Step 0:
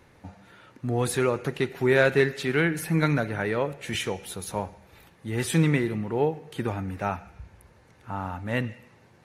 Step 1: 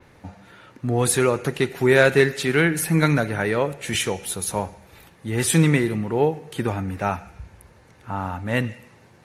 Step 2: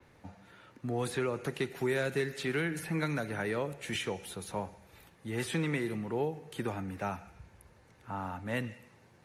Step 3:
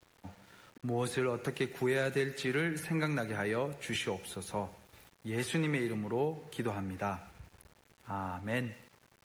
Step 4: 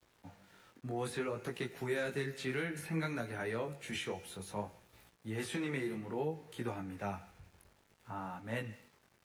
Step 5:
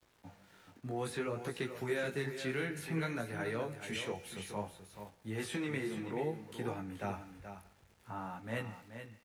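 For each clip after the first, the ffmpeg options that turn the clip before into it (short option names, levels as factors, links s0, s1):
-af "adynamicequalizer=threshold=0.00316:dfrequency=9400:dqfactor=0.7:tfrequency=9400:tqfactor=0.7:attack=5:release=100:ratio=0.375:range=3.5:mode=boostabove:tftype=bell,volume=1.68"
-filter_complex "[0:a]acrossover=split=110|330|4200[s0][s1][s2][s3];[s0]acompressor=threshold=0.00631:ratio=4[s4];[s1]acompressor=threshold=0.0501:ratio=4[s5];[s2]acompressor=threshold=0.0708:ratio=4[s6];[s3]acompressor=threshold=0.0112:ratio=4[s7];[s4][s5][s6][s7]amix=inputs=4:normalize=0,volume=0.355"
-af "aeval=exprs='val(0)*gte(abs(val(0)),0.00158)':c=same"
-af "flanger=delay=16.5:depth=6.2:speed=0.6,volume=0.841"
-af "aecho=1:1:429:0.335"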